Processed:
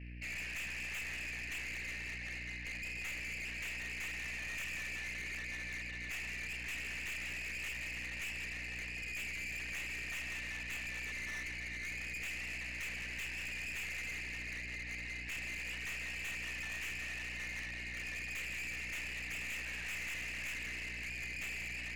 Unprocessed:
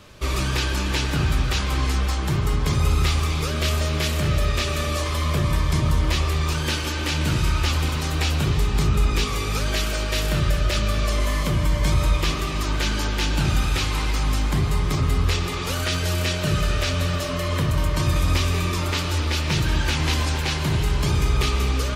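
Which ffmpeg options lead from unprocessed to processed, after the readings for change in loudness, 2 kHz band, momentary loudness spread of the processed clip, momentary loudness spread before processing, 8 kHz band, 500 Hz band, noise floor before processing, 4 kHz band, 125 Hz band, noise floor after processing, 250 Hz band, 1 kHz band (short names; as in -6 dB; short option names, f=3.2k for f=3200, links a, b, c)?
-17.0 dB, -8.0 dB, 2 LU, 3 LU, -16.5 dB, -29.0 dB, -25 dBFS, -19.5 dB, -30.5 dB, -44 dBFS, -27.0 dB, -28.0 dB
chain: -af "asuperpass=centerf=2200:order=12:qfactor=2.1,aeval=exprs='val(0)+0.00501*(sin(2*PI*60*n/s)+sin(2*PI*2*60*n/s)/2+sin(2*PI*3*60*n/s)/3+sin(2*PI*4*60*n/s)/4+sin(2*PI*5*60*n/s)/5)':c=same,aeval=exprs='(tanh(112*val(0)+0.3)-tanh(0.3))/112':c=same,volume=1.5dB"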